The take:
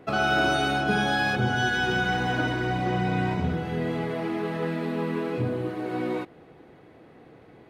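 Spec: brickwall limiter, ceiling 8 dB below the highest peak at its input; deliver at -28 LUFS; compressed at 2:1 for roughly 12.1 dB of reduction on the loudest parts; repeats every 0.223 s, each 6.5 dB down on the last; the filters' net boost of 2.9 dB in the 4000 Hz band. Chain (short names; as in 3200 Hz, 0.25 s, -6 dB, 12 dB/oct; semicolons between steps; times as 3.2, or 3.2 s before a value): bell 4000 Hz +4 dB; compressor 2:1, threshold -43 dBFS; limiter -32.5 dBFS; feedback echo 0.223 s, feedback 47%, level -6.5 dB; gain +12.5 dB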